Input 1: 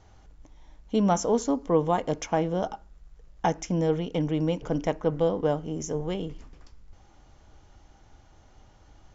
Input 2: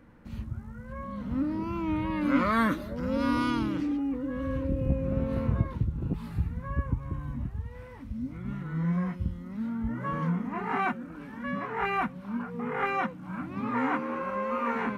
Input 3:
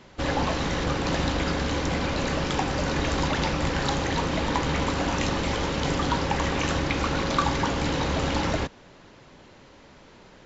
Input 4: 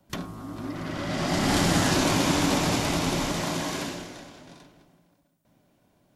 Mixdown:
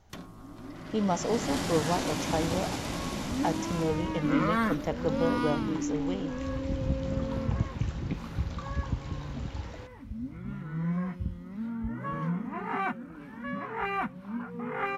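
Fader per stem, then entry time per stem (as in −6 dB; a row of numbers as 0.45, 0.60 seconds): −5.0, −2.5, −19.5, −9.5 decibels; 0.00, 2.00, 1.20, 0.00 seconds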